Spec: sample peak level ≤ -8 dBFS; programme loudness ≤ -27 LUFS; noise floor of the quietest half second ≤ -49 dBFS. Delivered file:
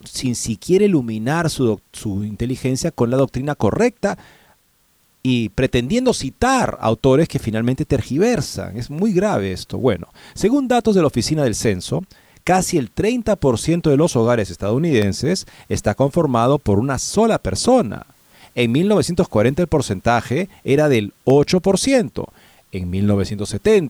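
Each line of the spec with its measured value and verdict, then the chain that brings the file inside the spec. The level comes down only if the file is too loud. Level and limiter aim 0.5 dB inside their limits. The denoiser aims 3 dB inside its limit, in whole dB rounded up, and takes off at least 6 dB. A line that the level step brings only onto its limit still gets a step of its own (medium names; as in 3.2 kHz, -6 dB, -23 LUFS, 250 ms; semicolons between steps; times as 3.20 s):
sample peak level -5.0 dBFS: fail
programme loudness -18.5 LUFS: fail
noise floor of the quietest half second -59 dBFS: pass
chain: trim -9 dB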